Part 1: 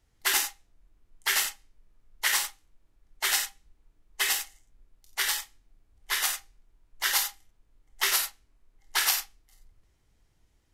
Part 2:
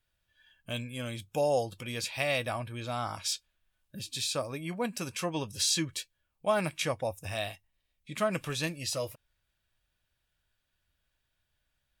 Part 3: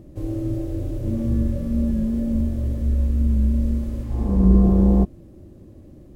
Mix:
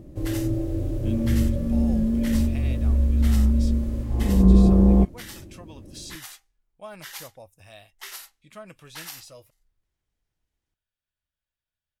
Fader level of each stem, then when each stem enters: -14.0 dB, -13.0 dB, 0.0 dB; 0.00 s, 0.35 s, 0.00 s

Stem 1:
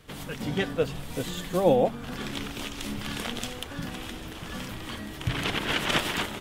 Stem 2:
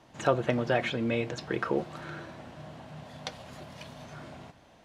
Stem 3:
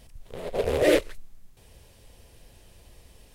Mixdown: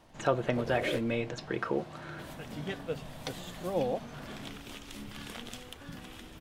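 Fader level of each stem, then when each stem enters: -10.0 dB, -2.5 dB, -15.0 dB; 2.10 s, 0.00 s, 0.00 s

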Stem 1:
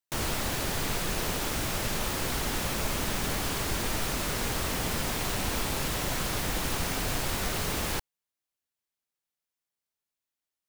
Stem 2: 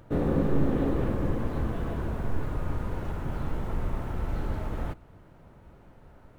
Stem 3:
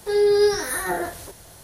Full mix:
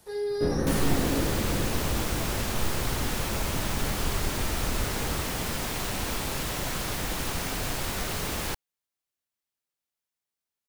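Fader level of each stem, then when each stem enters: -0.5 dB, -1.5 dB, -12.5 dB; 0.55 s, 0.30 s, 0.00 s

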